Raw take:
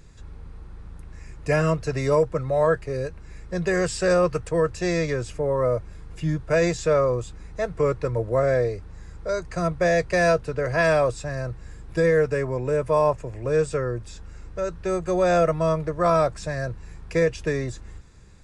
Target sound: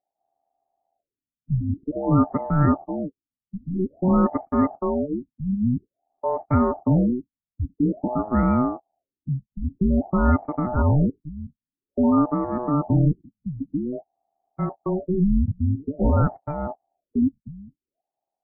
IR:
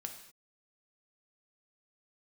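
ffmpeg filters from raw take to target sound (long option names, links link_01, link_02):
-af "agate=range=-37dB:threshold=-29dB:ratio=16:detection=peak,adynamicsmooth=sensitivity=0.5:basefreq=910,aeval=exprs='val(0)*sin(2*PI*740*n/s)':channel_layout=same,tiltshelf=frequency=970:gain=9,afftfilt=real='re*lt(b*sr/1024,240*pow(2400/240,0.5+0.5*sin(2*PI*0.5*pts/sr)))':imag='im*lt(b*sr/1024,240*pow(2400/240,0.5+0.5*sin(2*PI*0.5*pts/sr)))':win_size=1024:overlap=0.75"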